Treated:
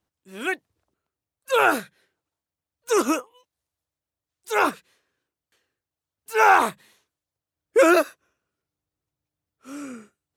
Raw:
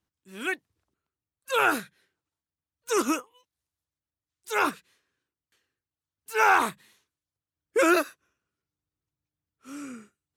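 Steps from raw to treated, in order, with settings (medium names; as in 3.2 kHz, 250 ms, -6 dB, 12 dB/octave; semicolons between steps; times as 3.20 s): peaking EQ 610 Hz +6.5 dB 1.1 oct; trim +2 dB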